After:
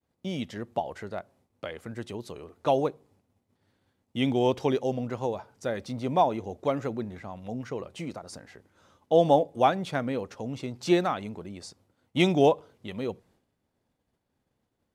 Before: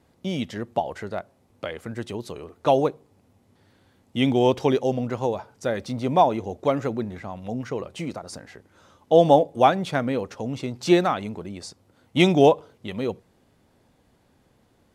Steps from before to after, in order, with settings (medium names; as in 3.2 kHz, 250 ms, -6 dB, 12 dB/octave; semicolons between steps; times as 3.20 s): expander -53 dBFS; trim -5 dB